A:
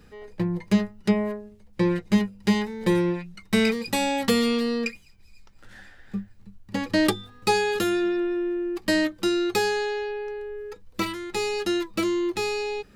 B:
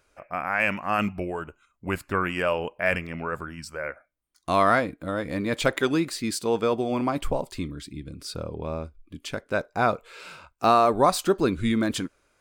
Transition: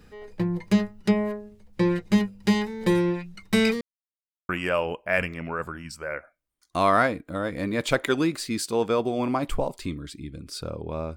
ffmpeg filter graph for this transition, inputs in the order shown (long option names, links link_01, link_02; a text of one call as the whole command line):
ffmpeg -i cue0.wav -i cue1.wav -filter_complex "[0:a]apad=whole_dur=11.16,atrim=end=11.16,asplit=2[link_01][link_02];[link_01]atrim=end=3.81,asetpts=PTS-STARTPTS,afade=type=out:start_time=3.806:duration=0.004:curve=hsin[link_03];[link_02]atrim=start=3.81:end=4.49,asetpts=PTS-STARTPTS,volume=0[link_04];[1:a]atrim=start=2.22:end=8.89,asetpts=PTS-STARTPTS,afade=type=in:duration=0.004:curve=hsin[link_05];[link_03][link_04][link_05]concat=n=3:v=0:a=1" out.wav